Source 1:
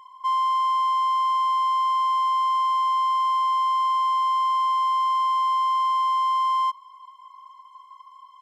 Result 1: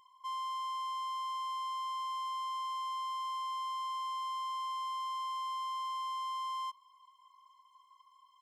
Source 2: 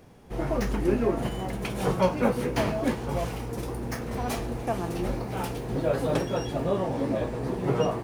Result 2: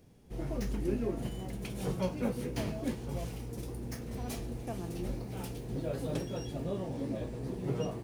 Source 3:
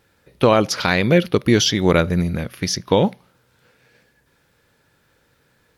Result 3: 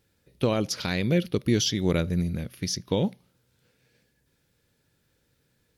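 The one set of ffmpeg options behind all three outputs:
-af "equalizer=f=1100:w=0.56:g=-10.5,volume=0.531"

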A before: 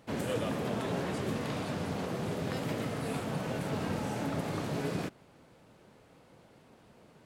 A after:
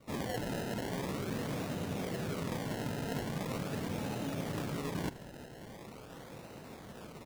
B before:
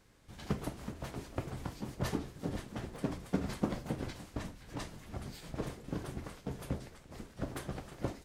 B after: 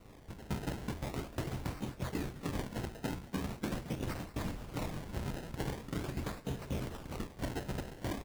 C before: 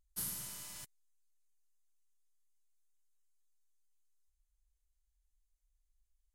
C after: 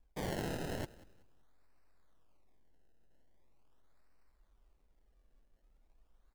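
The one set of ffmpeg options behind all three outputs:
-filter_complex "[0:a]adynamicequalizer=threshold=0.00282:dfrequency=1100:dqfactor=1.1:tfrequency=1100:tqfactor=1.1:attack=5:release=100:ratio=0.375:range=2:mode=cutabove:tftype=bell,areverse,acompressor=threshold=0.00631:ratio=10,areverse,acrusher=samples=26:mix=1:aa=0.000001:lfo=1:lforange=26:lforate=0.42,asplit=4[s0][s1][s2][s3];[s1]adelay=188,afreqshift=-45,volume=0.106[s4];[s2]adelay=376,afreqshift=-90,volume=0.0327[s5];[s3]adelay=564,afreqshift=-135,volume=0.0102[s6];[s0][s4][s5][s6]amix=inputs=4:normalize=0,volume=3.16"

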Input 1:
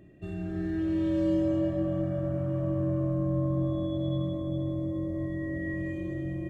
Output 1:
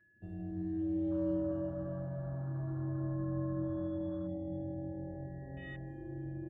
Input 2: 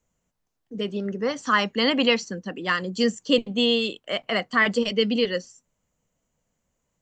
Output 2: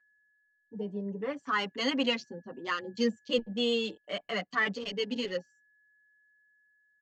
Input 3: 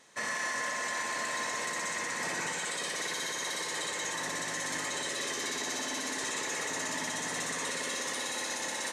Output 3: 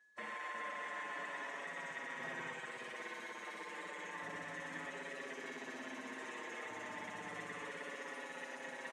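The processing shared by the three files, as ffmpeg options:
-filter_complex "[0:a]afwtdn=0.0141,aeval=exprs='val(0)+0.00112*sin(2*PI*1700*n/s)':c=same,asplit=2[s0][s1];[s1]adelay=6.1,afreqshift=-0.3[s2];[s0][s2]amix=inputs=2:normalize=1,volume=0.531"

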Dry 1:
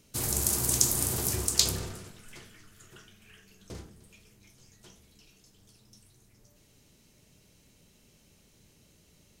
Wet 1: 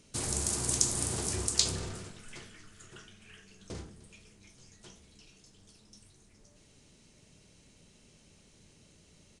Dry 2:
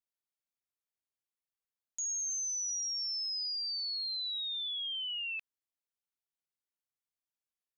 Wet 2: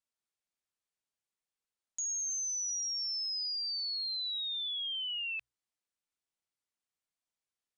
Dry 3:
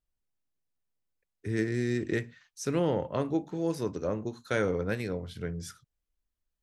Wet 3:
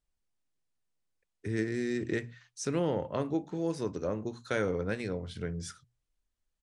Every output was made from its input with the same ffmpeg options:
-filter_complex "[0:a]bandreject=f=60:t=h:w=6,bandreject=f=120:t=h:w=6,asplit=2[s0][s1];[s1]acompressor=threshold=0.0141:ratio=6,volume=0.891[s2];[s0][s2]amix=inputs=2:normalize=0,aresample=22050,aresample=44100,volume=0.631"

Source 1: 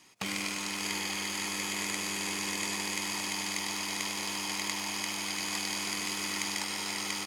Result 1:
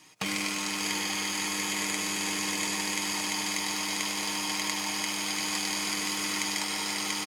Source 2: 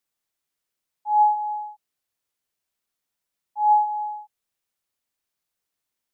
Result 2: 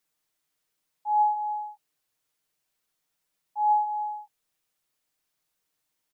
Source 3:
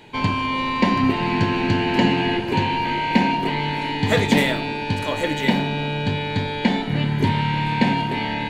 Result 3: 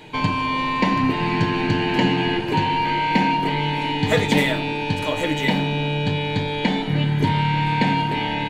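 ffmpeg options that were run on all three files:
-filter_complex "[0:a]aecho=1:1:6.5:0.44,asplit=2[s0][s1];[s1]acompressor=threshold=0.0398:ratio=6,volume=0.944[s2];[s0][s2]amix=inputs=2:normalize=0,volume=0.708"

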